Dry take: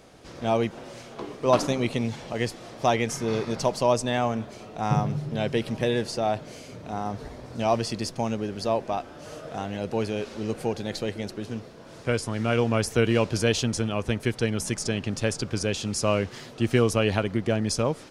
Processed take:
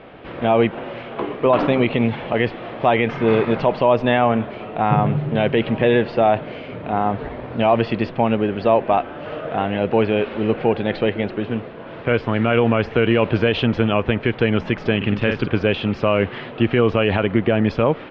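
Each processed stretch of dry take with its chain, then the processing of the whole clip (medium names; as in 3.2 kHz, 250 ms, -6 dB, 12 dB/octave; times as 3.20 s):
14.96–15.48 s: peaking EQ 660 Hz -6 dB 0.92 oct + doubling 49 ms -7 dB
whole clip: steep low-pass 3.1 kHz 36 dB/octave; bass shelf 170 Hz -6.5 dB; loudness maximiser +16 dB; trim -4 dB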